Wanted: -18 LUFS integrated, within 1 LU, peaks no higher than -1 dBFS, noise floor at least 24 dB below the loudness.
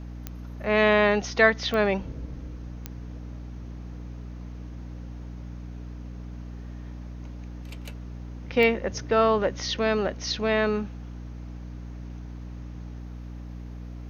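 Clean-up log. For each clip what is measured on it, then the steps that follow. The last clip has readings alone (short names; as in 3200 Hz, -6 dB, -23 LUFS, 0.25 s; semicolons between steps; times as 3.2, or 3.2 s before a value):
clicks 5; hum 60 Hz; harmonics up to 300 Hz; hum level -35 dBFS; loudness -24.0 LUFS; peak -4.5 dBFS; loudness target -18.0 LUFS
-> de-click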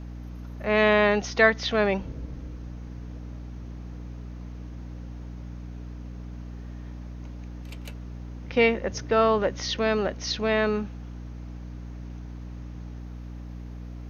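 clicks 0; hum 60 Hz; harmonics up to 300 Hz; hum level -35 dBFS
-> notches 60/120/180/240/300 Hz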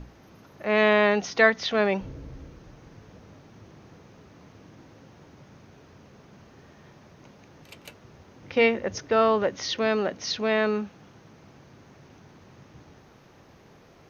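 hum none; loudness -23.5 LUFS; peak -4.5 dBFS; loudness target -18.0 LUFS
-> gain +5.5 dB; limiter -1 dBFS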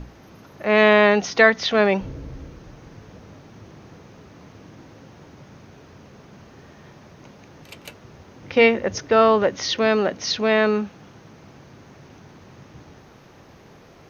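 loudness -18.5 LUFS; peak -1.0 dBFS; noise floor -48 dBFS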